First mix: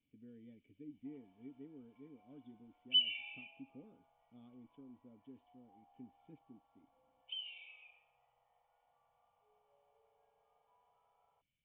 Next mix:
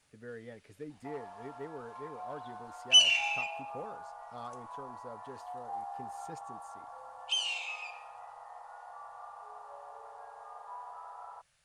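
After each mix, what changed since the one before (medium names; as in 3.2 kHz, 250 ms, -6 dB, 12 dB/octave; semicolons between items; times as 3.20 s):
master: remove cascade formant filter i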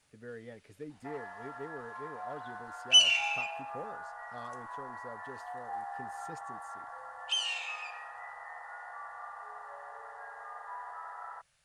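first sound: remove low-pass 1.1 kHz 24 dB/octave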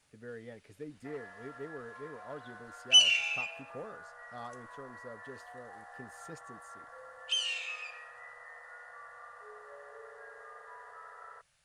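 first sound: remove resonant high-pass 820 Hz, resonance Q 5.9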